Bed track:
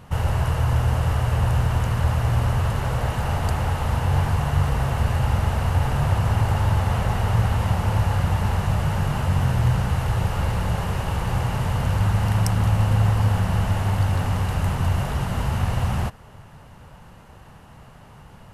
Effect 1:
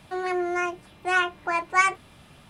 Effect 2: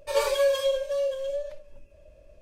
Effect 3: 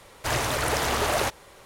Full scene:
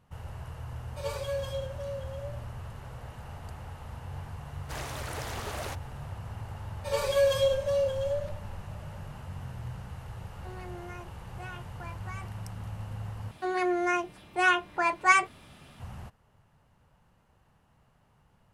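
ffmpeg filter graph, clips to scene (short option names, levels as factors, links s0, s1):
-filter_complex "[2:a]asplit=2[s0][s1];[1:a]asplit=2[s2][s3];[0:a]volume=0.106[s4];[s0]bandreject=f=1800:w=28[s5];[s1]dynaudnorm=f=140:g=5:m=2.11[s6];[s2]acompressor=threshold=0.0708:ratio=6:attack=3.2:release=140:knee=1:detection=peak[s7];[s4]asplit=2[s8][s9];[s8]atrim=end=13.314[s10];[s3]atrim=end=2.49,asetpts=PTS-STARTPTS,volume=0.891[s11];[s9]atrim=start=15.796[s12];[s5]atrim=end=2.41,asetpts=PTS-STARTPTS,volume=0.282,afade=t=in:d=0.004:c=hsin,afade=t=out:st=2.406:d=0.004:c=hsin,adelay=890[s13];[3:a]atrim=end=1.65,asetpts=PTS-STARTPTS,volume=0.224,afade=t=in:d=0.004:c=hsin,afade=t=out:st=1.646:d=0.004:c=hsin,adelay=196245S[s14];[s6]atrim=end=2.41,asetpts=PTS-STARTPTS,volume=0.473,afade=t=in:d=0.004:c=hsin,afade=t=out:st=2.406:d=0.004:c=hsin,adelay=6770[s15];[s7]atrim=end=2.49,asetpts=PTS-STARTPTS,volume=0.15,afade=t=in:d=0.004:c=hsin,afade=t=out:st=2.486:d=0.004:c=hsin,adelay=10330[s16];[s10][s11]acrossfade=d=0.004:c1=hsin:c2=hsin[s17];[s17][s12]acrossfade=d=0.004:c1=hsin:c2=hsin[s18];[s18][s13][s14][s15][s16]amix=inputs=5:normalize=0"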